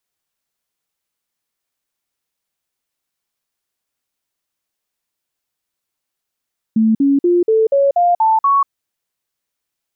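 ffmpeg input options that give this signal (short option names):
-f lavfi -i "aevalsrc='0.335*clip(min(mod(t,0.24),0.19-mod(t,0.24))/0.005,0,1)*sin(2*PI*221*pow(2,floor(t/0.24)/3)*mod(t,0.24))':d=1.92:s=44100"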